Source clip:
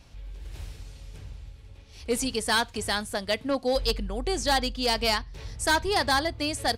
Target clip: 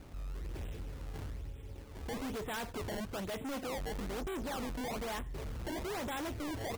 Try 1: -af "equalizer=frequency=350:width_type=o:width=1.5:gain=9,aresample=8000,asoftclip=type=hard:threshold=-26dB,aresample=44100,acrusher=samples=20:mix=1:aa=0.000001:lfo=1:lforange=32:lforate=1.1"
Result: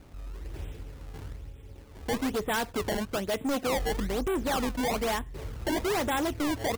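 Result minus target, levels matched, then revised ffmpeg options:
hard clipping: distortion −5 dB
-af "equalizer=frequency=350:width_type=o:width=1.5:gain=9,aresample=8000,asoftclip=type=hard:threshold=-37.5dB,aresample=44100,acrusher=samples=20:mix=1:aa=0.000001:lfo=1:lforange=32:lforate=1.1"

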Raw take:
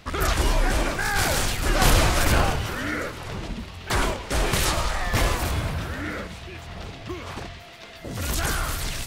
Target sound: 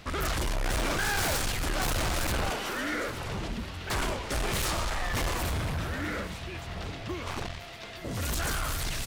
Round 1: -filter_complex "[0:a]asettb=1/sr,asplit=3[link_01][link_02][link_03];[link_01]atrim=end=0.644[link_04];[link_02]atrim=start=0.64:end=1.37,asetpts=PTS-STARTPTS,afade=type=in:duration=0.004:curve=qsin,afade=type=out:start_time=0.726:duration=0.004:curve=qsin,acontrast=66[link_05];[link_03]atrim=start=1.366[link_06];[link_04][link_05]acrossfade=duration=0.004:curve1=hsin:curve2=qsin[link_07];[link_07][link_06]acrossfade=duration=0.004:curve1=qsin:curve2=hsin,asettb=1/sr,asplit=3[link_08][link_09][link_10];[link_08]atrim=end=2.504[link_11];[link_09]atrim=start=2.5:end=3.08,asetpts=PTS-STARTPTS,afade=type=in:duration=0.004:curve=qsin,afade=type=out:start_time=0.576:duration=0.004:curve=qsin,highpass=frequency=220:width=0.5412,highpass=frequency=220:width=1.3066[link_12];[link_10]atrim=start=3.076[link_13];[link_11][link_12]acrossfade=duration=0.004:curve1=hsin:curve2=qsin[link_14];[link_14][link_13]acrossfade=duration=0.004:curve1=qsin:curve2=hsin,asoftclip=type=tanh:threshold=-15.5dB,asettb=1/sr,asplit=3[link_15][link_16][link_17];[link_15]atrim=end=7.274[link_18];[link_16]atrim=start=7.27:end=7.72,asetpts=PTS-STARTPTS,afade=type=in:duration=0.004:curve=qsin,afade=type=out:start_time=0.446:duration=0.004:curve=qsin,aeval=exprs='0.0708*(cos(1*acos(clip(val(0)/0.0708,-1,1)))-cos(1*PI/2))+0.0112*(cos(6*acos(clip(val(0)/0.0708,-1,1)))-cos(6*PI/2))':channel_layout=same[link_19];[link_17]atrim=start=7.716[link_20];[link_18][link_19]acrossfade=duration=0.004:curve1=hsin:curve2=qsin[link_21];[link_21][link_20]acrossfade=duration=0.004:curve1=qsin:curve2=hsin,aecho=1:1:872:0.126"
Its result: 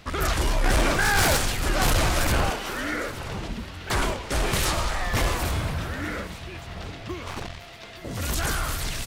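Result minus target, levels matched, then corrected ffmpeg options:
soft clipping: distortion −8 dB
-filter_complex "[0:a]asettb=1/sr,asplit=3[link_01][link_02][link_03];[link_01]atrim=end=0.644[link_04];[link_02]atrim=start=0.64:end=1.37,asetpts=PTS-STARTPTS,afade=type=in:duration=0.004:curve=qsin,afade=type=out:start_time=0.726:duration=0.004:curve=qsin,acontrast=66[link_05];[link_03]atrim=start=1.366[link_06];[link_04][link_05]acrossfade=duration=0.004:curve1=hsin:curve2=qsin[link_07];[link_07][link_06]acrossfade=duration=0.004:curve1=qsin:curve2=hsin,asettb=1/sr,asplit=3[link_08][link_09][link_10];[link_08]atrim=end=2.504[link_11];[link_09]atrim=start=2.5:end=3.08,asetpts=PTS-STARTPTS,afade=type=in:duration=0.004:curve=qsin,afade=type=out:start_time=0.576:duration=0.004:curve=qsin,highpass=frequency=220:width=0.5412,highpass=frequency=220:width=1.3066[link_12];[link_10]atrim=start=3.076[link_13];[link_11][link_12]acrossfade=duration=0.004:curve1=hsin:curve2=qsin[link_14];[link_14][link_13]acrossfade=duration=0.004:curve1=qsin:curve2=hsin,asoftclip=type=tanh:threshold=-26.5dB,asettb=1/sr,asplit=3[link_15][link_16][link_17];[link_15]atrim=end=7.274[link_18];[link_16]atrim=start=7.27:end=7.72,asetpts=PTS-STARTPTS,afade=type=in:duration=0.004:curve=qsin,afade=type=out:start_time=0.446:duration=0.004:curve=qsin,aeval=exprs='0.0708*(cos(1*acos(clip(val(0)/0.0708,-1,1)))-cos(1*PI/2))+0.0112*(cos(6*acos(clip(val(0)/0.0708,-1,1)))-cos(6*PI/2))':channel_layout=same[link_19];[link_17]atrim=start=7.716[link_20];[link_18][link_19]acrossfade=duration=0.004:curve1=hsin:curve2=qsin[link_21];[link_21][link_20]acrossfade=duration=0.004:curve1=qsin:curve2=hsin,aecho=1:1:872:0.126"

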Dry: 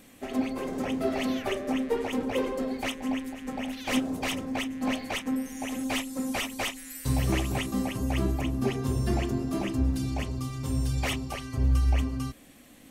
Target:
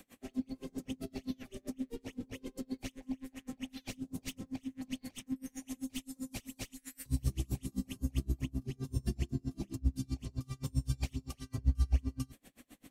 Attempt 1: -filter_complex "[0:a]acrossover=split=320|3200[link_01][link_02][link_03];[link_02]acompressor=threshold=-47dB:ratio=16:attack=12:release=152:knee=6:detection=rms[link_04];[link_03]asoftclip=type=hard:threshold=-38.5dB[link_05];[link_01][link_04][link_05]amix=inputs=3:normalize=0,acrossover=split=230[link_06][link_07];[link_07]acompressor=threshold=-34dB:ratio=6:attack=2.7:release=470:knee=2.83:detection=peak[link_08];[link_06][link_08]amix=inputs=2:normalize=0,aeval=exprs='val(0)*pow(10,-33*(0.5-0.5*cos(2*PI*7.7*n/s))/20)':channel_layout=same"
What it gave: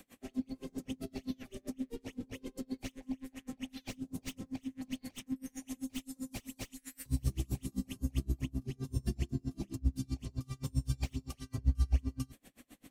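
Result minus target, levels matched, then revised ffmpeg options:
hard clipping: distortion +13 dB
-filter_complex "[0:a]acrossover=split=320|3200[link_01][link_02][link_03];[link_02]acompressor=threshold=-47dB:ratio=16:attack=12:release=152:knee=6:detection=rms[link_04];[link_03]asoftclip=type=hard:threshold=-31dB[link_05];[link_01][link_04][link_05]amix=inputs=3:normalize=0,acrossover=split=230[link_06][link_07];[link_07]acompressor=threshold=-34dB:ratio=6:attack=2.7:release=470:knee=2.83:detection=peak[link_08];[link_06][link_08]amix=inputs=2:normalize=0,aeval=exprs='val(0)*pow(10,-33*(0.5-0.5*cos(2*PI*7.7*n/s))/20)':channel_layout=same"

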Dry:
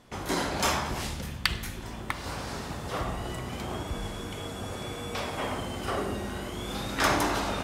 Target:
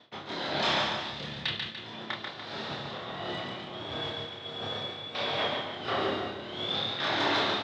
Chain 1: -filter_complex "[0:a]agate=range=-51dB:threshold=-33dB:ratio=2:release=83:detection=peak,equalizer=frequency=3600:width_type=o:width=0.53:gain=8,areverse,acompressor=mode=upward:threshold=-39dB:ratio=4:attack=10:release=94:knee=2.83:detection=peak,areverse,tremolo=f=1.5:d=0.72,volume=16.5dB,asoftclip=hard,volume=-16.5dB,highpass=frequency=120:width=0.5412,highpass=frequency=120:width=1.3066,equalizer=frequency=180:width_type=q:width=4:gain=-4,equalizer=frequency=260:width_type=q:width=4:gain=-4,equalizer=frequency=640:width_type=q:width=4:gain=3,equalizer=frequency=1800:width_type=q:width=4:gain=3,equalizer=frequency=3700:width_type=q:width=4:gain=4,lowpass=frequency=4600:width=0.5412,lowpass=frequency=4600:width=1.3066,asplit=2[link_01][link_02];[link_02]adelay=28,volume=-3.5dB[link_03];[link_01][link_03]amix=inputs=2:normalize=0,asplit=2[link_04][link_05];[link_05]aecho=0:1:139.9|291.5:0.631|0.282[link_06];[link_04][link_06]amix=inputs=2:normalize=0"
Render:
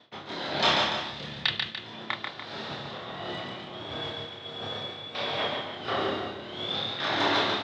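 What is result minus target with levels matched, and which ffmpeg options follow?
gain into a clipping stage and back: distortion −9 dB
-filter_complex "[0:a]agate=range=-51dB:threshold=-33dB:ratio=2:release=83:detection=peak,equalizer=frequency=3600:width_type=o:width=0.53:gain=8,areverse,acompressor=mode=upward:threshold=-39dB:ratio=4:attack=10:release=94:knee=2.83:detection=peak,areverse,tremolo=f=1.5:d=0.72,volume=26.5dB,asoftclip=hard,volume=-26.5dB,highpass=frequency=120:width=0.5412,highpass=frequency=120:width=1.3066,equalizer=frequency=180:width_type=q:width=4:gain=-4,equalizer=frequency=260:width_type=q:width=4:gain=-4,equalizer=frequency=640:width_type=q:width=4:gain=3,equalizer=frequency=1800:width_type=q:width=4:gain=3,equalizer=frequency=3700:width_type=q:width=4:gain=4,lowpass=frequency=4600:width=0.5412,lowpass=frequency=4600:width=1.3066,asplit=2[link_01][link_02];[link_02]adelay=28,volume=-3.5dB[link_03];[link_01][link_03]amix=inputs=2:normalize=0,asplit=2[link_04][link_05];[link_05]aecho=0:1:139.9|291.5:0.631|0.282[link_06];[link_04][link_06]amix=inputs=2:normalize=0"

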